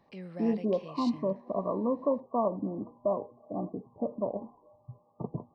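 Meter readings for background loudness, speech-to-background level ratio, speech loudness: -45.5 LUFS, 13.0 dB, -32.5 LUFS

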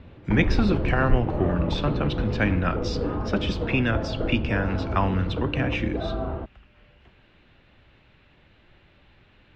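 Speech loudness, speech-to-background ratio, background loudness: -26.5 LUFS, 2.5 dB, -29.0 LUFS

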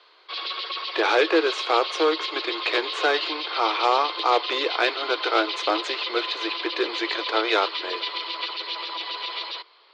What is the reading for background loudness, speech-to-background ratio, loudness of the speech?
-29.0 LUFS, 4.5 dB, -24.5 LUFS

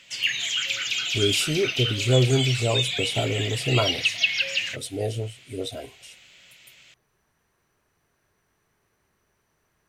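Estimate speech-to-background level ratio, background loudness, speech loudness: -1.5 dB, -24.5 LUFS, -26.0 LUFS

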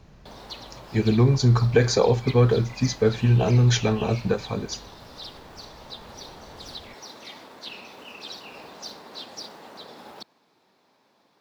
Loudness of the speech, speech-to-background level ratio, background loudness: -21.5 LUFS, 19.0 dB, -40.5 LUFS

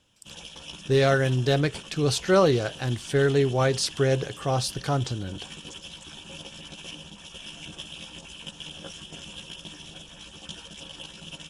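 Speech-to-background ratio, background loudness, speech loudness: 16.0 dB, -40.5 LUFS, -24.5 LUFS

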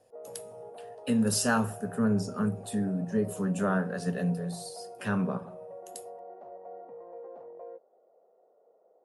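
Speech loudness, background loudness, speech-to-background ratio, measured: -30.0 LUFS, -45.5 LUFS, 15.5 dB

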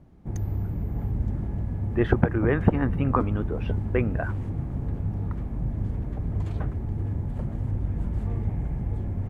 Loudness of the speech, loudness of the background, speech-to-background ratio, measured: -26.5 LUFS, -30.5 LUFS, 4.0 dB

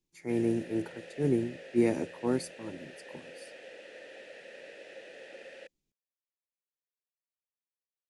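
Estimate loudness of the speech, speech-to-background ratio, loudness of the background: -31.5 LUFS, 17.0 dB, -48.5 LUFS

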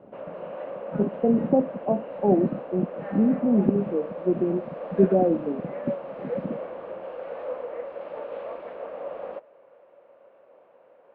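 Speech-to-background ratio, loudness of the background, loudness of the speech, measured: 11.5 dB, -36.0 LUFS, -24.5 LUFS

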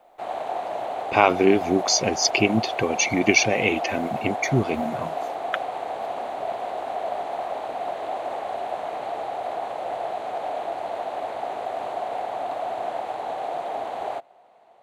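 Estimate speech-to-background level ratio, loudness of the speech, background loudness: 8.5 dB, -21.5 LUFS, -30.0 LUFS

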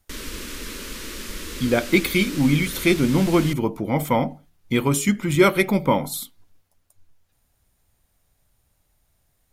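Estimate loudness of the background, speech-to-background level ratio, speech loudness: -33.5 LUFS, 12.5 dB, -21.0 LUFS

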